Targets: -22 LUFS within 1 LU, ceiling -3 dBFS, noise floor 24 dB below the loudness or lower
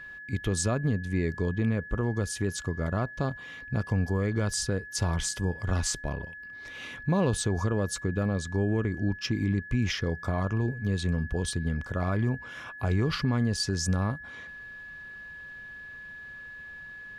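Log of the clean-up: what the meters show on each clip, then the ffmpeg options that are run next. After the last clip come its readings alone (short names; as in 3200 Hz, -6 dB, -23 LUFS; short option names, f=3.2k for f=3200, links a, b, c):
steady tone 1700 Hz; tone level -41 dBFS; loudness -29.5 LUFS; peak -15.5 dBFS; loudness target -22.0 LUFS
-> -af "bandreject=f=1.7k:w=30"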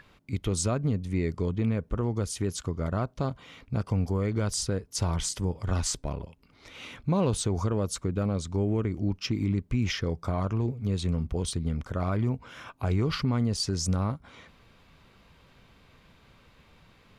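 steady tone none; loudness -29.5 LUFS; peak -15.5 dBFS; loudness target -22.0 LUFS
-> -af "volume=7.5dB"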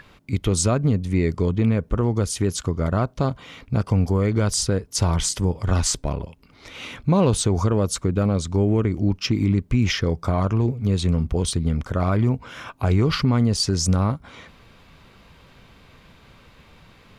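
loudness -22.0 LUFS; peak -8.0 dBFS; noise floor -52 dBFS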